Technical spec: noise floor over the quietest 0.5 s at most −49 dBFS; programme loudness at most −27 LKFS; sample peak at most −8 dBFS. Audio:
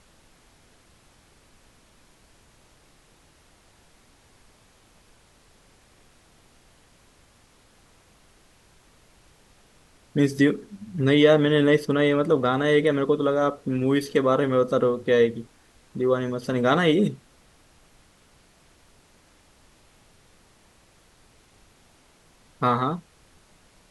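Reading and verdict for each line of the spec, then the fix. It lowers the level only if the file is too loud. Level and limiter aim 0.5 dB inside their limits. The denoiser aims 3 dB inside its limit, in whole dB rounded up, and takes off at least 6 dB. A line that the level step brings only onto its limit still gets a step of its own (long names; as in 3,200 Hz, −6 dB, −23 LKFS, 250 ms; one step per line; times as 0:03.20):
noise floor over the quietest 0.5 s −58 dBFS: in spec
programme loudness −22.0 LKFS: out of spec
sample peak −6.0 dBFS: out of spec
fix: level −5.5 dB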